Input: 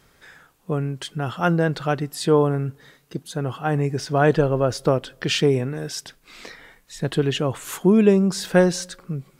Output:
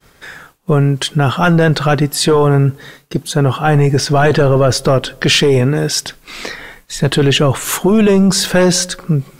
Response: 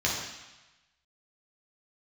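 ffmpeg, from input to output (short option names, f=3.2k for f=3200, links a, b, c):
-af "apsyclip=20.5dB,agate=range=-33dB:threshold=-31dB:ratio=3:detection=peak,volume=-6dB"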